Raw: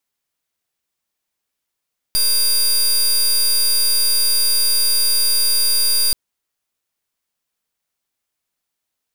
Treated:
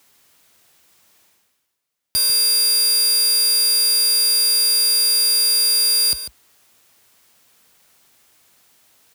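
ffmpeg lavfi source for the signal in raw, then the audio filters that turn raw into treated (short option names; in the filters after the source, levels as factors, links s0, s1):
-f lavfi -i "aevalsrc='0.168*(2*lt(mod(4780*t,1),0.23)-1)':d=3.98:s=44100"
-filter_complex "[0:a]highpass=f=60:w=0.5412,highpass=f=60:w=1.3066,areverse,acompressor=mode=upward:threshold=0.0141:ratio=2.5,areverse,asplit=2[s0][s1];[s1]adelay=145.8,volume=0.316,highshelf=f=4000:g=-3.28[s2];[s0][s2]amix=inputs=2:normalize=0"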